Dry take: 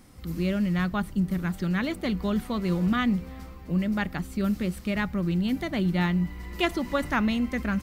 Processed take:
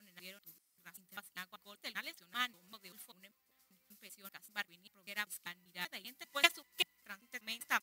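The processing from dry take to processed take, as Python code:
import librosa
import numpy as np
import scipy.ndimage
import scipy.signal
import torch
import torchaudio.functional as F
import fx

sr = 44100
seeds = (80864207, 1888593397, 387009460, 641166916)

y = fx.block_reorder(x, sr, ms=195.0, group=4)
y = np.diff(y, prepend=0.0)
y = fx.upward_expand(y, sr, threshold_db=-53.0, expansion=2.5)
y = F.gain(torch.from_numpy(y), 12.5).numpy()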